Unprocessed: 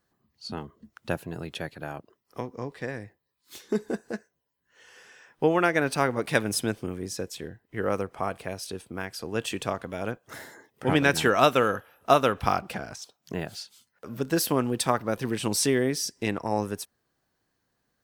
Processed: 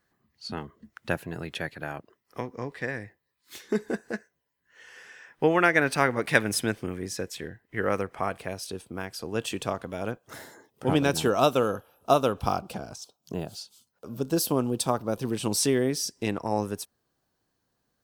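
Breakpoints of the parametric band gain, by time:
parametric band 1,900 Hz 0.8 octaves
0:08.15 +6 dB
0:08.73 −3.5 dB
0:10.40 −3.5 dB
0:11.28 −14.5 dB
0:15.02 −14.5 dB
0:15.66 −4.5 dB

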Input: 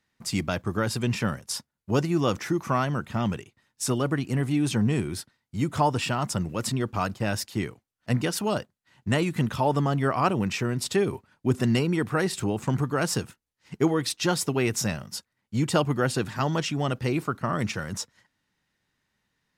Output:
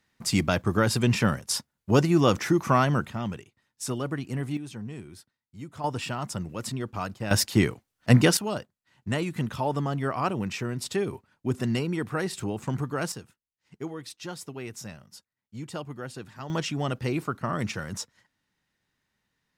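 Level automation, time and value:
+3.5 dB
from 0:03.10 −5 dB
from 0:04.57 −14 dB
from 0:05.84 −5 dB
from 0:07.31 +7.5 dB
from 0:08.37 −4 dB
from 0:13.12 −13 dB
from 0:16.50 −2 dB

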